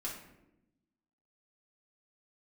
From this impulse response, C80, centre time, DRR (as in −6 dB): 8.0 dB, 35 ms, −5.0 dB